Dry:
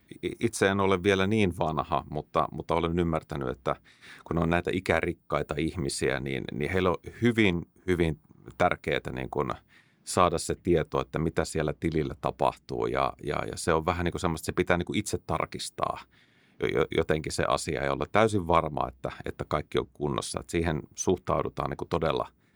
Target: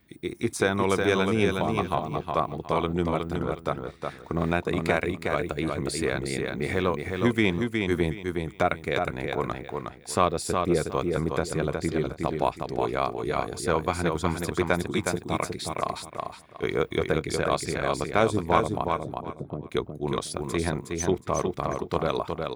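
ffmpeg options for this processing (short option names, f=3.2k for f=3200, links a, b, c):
-filter_complex "[0:a]asplit=3[a][b][c];[a]afade=t=out:st=18.83:d=0.02[d];[b]asuperpass=centerf=200:order=4:qfactor=0.7,afade=t=in:st=18.83:d=0.02,afade=t=out:st=19.68:d=0.02[e];[c]afade=t=in:st=19.68:d=0.02[f];[d][e][f]amix=inputs=3:normalize=0,aecho=1:1:364|728|1092:0.596|0.149|0.0372"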